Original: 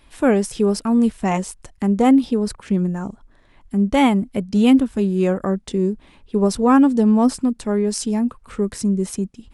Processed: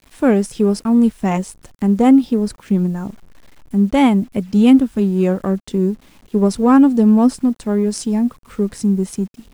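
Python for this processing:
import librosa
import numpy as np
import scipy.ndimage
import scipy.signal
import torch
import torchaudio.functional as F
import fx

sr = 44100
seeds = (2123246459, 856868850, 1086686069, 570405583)

p1 = fx.backlash(x, sr, play_db=-17.5)
p2 = x + (p1 * 10.0 ** (-10.0 / 20.0))
p3 = fx.quant_dither(p2, sr, seeds[0], bits=8, dither='none')
p4 = fx.peak_eq(p3, sr, hz=210.0, db=3.5, octaves=1.7)
y = p4 * 10.0 ** (-2.0 / 20.0)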